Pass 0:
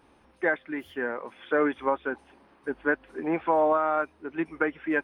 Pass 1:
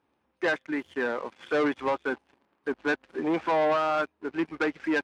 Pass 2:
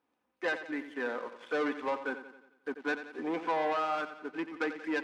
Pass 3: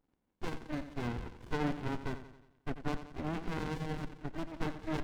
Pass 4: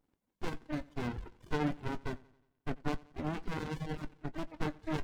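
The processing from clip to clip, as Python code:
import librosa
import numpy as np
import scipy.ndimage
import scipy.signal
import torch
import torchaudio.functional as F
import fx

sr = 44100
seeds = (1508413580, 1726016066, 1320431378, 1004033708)

y1 = fx.leveller(x, sr, passes=3)
y1 = scipy.signal.sosfilt(scipy.signal.butter(2, 79.0, 'highpass', fs=sr, output='sos'), y1)
y1 = fx.air_absorb(y1, sr, metres=53.0)
y1 = y1 * librosa.db_to_amplitude(-7.5)
y2 = fx.highpass(y1, sr, hz=220.0, slope=6)
y2 = y2 + 0.32 * np.pad(y2, (int(4.0 * sr / 1000.0), 0))[:len(y2)]
y2 = fx.echo_feedback(y2, sr, ms=89, feedback_pct=52, wet_db=-11.5)
y2 = y2 * librosa.db_to_amplitude(-6.0)
y3 = fx.running_max(y2, sr, window=65)
y3 = y3 * librosa.db_to_amplitude(2.5)
y4 = fx.dereverb_blind(y3, sr, rt60_s=1.0)
y4 = fx.doubler(y4, sr, ms=20.0, db=-13.5)
y4 = y4 * librosa.db_to_amplitude(1.0)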